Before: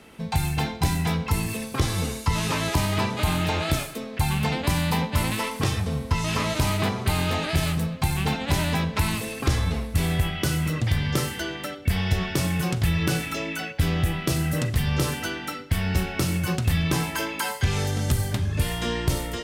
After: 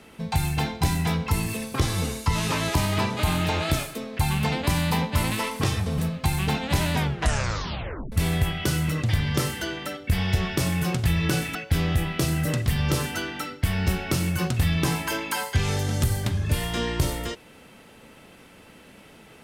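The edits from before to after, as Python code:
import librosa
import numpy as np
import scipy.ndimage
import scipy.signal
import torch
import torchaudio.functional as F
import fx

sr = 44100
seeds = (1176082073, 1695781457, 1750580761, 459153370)

y = fx.edit(x, sr, fx.cut(start_s=5.98, length_s=1.78),
    fx.tape_stop(start_s=8.71, length_s=1.19),
    fx.cut(start_s=13.33, length_s=0.3), tone=tone)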